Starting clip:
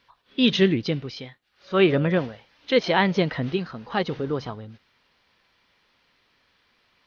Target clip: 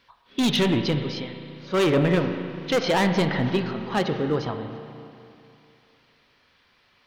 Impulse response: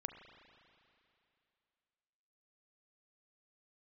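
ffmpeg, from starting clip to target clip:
-filter_complex "[0:a]asoftclip=type=hard:threshold=0.1[s0];[1:a]atrim=start_sample=2205[s1];[s0][s1]afir=irnorm=-1:irlink=0,volume=1.88"

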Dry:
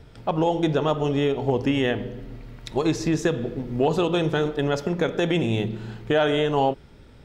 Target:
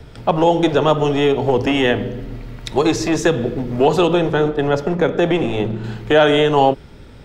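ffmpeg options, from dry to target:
-filter_complex "[0:a]asettb=1/sr,asplit=3[s0][s1][s2];[s0]atrim=end=4.134[s3];[s1]atrim=start=4.13:end=5.84,asetpts=PTS-STARTPTS,afade=t=in:d=0.004:c=qsin,afade=t=out:st=1.706:d=0.004:c=qsin,highshelf=f=2500:g=-10[s4];[s2]atrim=start=5.836[s5];[s3][s4]acrossfade=d=0.004:c1=hsin:c2=qsin[s6];[s6][s5]acrossfade=d=0.004:c1=qsin:c2=hsin,acrossover=split=280|390|1500[s7][s8][s9][s10];[s7]aeval=exprs='0.0398*(abs(mod(val(0)/0.0398+3,4)-2)-1)':c=same[s11];[s11][s8][s9][s10]amix=inputs=4:normalize=0,volume=2.66"

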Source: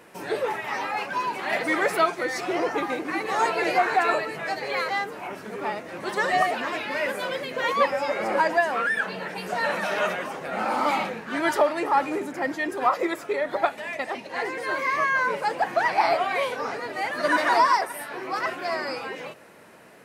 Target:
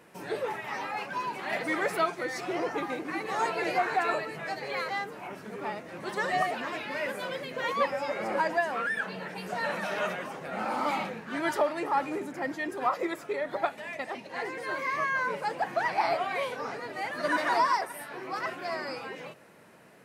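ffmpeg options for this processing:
-af "equalizer=f=150:t=o:w=1.1:g=5,volume=0.501"

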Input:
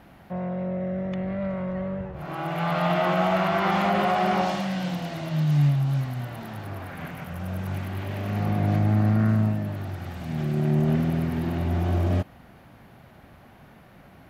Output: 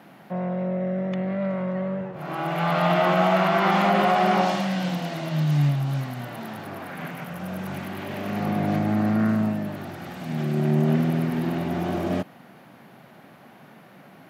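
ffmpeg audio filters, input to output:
-af "highpass=f=150:w=0.5412,highpass=f=150:w=1.3066,volume=1.41"

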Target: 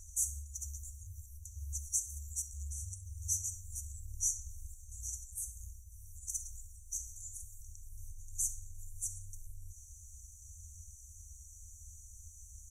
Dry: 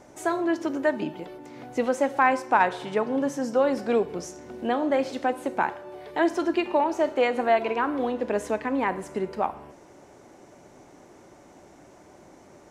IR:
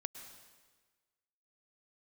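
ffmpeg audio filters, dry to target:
-filter_complex "[0:a]asettb=1/sr,asplit=3[s0][s1][s2];[s0]atrim=end=7.034[s3];[s1]atrim=start=7.03:end=7.43,asetpts=PTS-STARTPTS,afade=t=in:d=0.004:c=qsin,afade=t=out:st=0.396:d=0.004:c=qsin,asplit=2[s4][s5];[s5]adelay=41,volume=0.562[s6];[s4][s6]amix=inputs=2:normalize=0,atrim=end_sample=17640[s7];[s2]atrim=start=7.426[s8];[s3][s7]acrossfade=d=0.004:c1=hsin:c2=qsin[s9];[s9][s8]acrossfade=d=0.004:c1=qsin:c2=hsin,afftfilt=real='re*(1-between(b*sr/4096,140,5800))':imag='im*(1-between(b*sr/4096,140,5800))':win_size=4096:overlap=0.75,asplit=2[s10][s11];[s11]aecho=0:1:66|132|198:0.119|0.0464|0.0181[s12];[s10][s12]amix=inputs=2:normalize=0,afreqshift=-52,volume=3.55"

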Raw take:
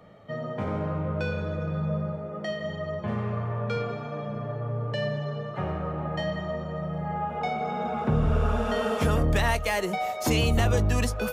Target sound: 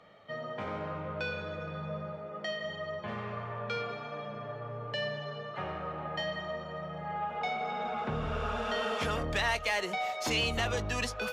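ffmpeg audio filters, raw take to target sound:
-filter_complex "[0:a]asplit=2[s0][s1];[s1]highpass=f=720:p=1,volume=3.16,asoftclip=type=tanh:threshold=0.2[s2];[s0][s2]amix=inputs=2:normalize=0,lowpass=f=3100:p=1,volume=0.501,equalizer=f=4200:t=o:w=2.3:g=8,volume=0.376"

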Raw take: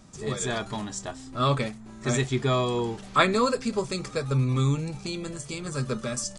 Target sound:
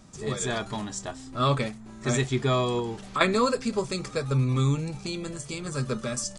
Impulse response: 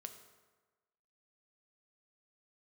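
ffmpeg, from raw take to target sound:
-filter_complex "[0:a]asettb=1/sr,asplit=3[s0][s1][s2];[s0]atrim=end=2.794[s3];[s1]atrim=start=2.79:end=3.21,asetpts=PTS-STARTPTS,afade=t=in:d=0.004:c=qsin,afade=t=out:st=0.416:d=0.004:c=qsin,acompressor=threshold=0.0447:ratio=6[s4];[s2]atrim=start=3.206[s5];[s3][s4]acrossfade=d=0.004:c1=hsin:c2=qsin[s6];[s6][s5]acrossfade=d=0.004:c1=qsin:c2=hsin"

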